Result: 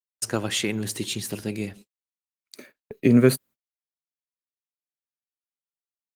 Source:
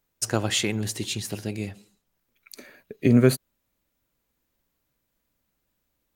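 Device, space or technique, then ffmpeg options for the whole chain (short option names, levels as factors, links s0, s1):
video call: -af "highpass=130,equalizer=f=720:w=2.6:g=-4,dynaudnorm=f=520:g=3:m=1.41,agate=range=0.00355:threshold=0.00631:ratio=16:detection=peak" -ar 48000 -c:a libopus -b:a 32k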